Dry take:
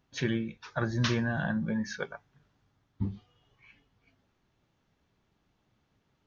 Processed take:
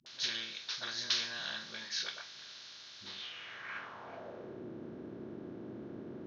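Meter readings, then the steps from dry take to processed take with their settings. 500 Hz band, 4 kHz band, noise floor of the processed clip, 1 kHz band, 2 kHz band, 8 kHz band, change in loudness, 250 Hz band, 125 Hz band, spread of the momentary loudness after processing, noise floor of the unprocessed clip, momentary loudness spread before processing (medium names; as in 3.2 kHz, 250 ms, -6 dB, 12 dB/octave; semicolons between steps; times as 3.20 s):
-8.5 dB, +7.5 dB, -52 dBFS, -6.0 dB, -4.0 dB, no reading, -7.5 dB, -13.5 dB, -20.5 dB, 15 LU, -75 dBFS, 11 LU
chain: spectral levelling over time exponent 0.4; phase dispersion highs, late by 62 ms, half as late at 370 Hz; band-pass sweep 4.4 kHz -> 320 Hz, 3.06–4.66 s; trim +4.5 dB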